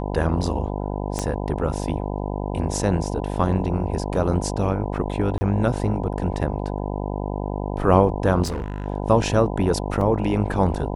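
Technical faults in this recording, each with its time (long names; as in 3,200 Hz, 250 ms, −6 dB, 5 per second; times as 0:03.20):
mains buzz 50 Hz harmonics 20 −27 dBFS
0:01.19: click −11 dBFS
0:05.38–0:05.41: drop-out 30 ms
0:08.43–0:08.86: clipping −23.5 dBFS
0:10.01: drop-out 2.7 ms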